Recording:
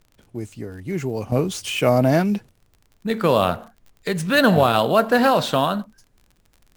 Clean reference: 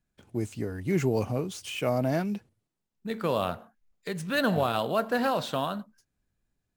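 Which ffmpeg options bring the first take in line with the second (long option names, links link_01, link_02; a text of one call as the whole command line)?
ffmpeg -i in.wav -af "adeclick=threshold=4,agate=range=-21dB:threshold=-51dB,asetnsamples=nb_out_samples=441:pad=0,asendcmd='1.32 volume volume -10dB',volume=0dB" out.wav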